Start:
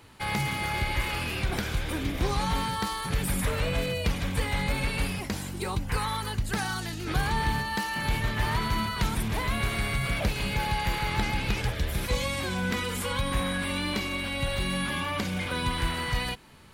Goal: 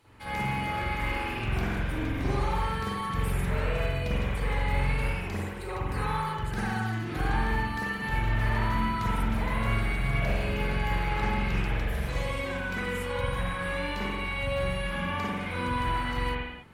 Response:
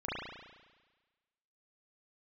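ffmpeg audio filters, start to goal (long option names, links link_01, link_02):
-filter_complex "[1:a]atrim=start_sample=2205,afade=type=out:start_time=0.28:duration=0.01,atrim=end_sample=12789,asetrate=33516,aresample=44100[link_01];[0:a][link_01]afir=irnorm=-1:irlink=0,volume=-7.5dB"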